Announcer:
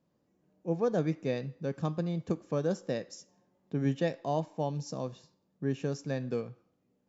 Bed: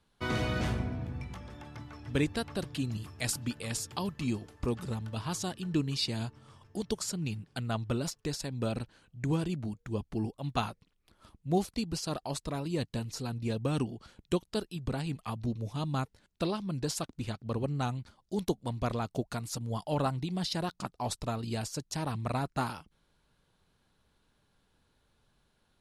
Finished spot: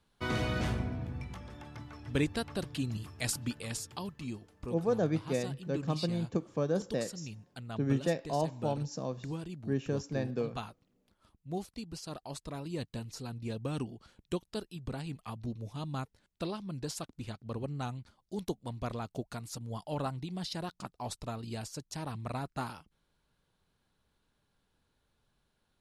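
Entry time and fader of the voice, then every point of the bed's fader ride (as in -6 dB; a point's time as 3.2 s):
4.05 s, -0.5 dB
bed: 3.49 s -1 dB
4.43 s -9 dB
11.81 s -9 dB
12.66 s -5 dB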